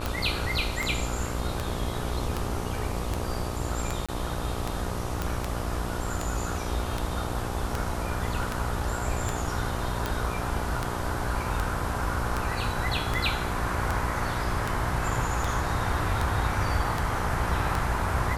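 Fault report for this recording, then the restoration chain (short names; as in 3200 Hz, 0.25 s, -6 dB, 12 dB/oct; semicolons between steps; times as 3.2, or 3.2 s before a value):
buzz 60 Hz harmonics 21 -34 dBFS
tick 78 rpm
4.06–4.09 gap 26 ms
5.22 pop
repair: de-click; de-hum 60 Hz, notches 21; interpolate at 4.06, 26 ms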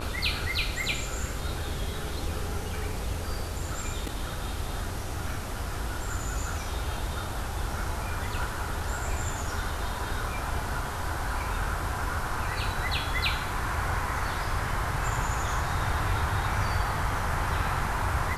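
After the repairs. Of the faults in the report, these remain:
5.22 pop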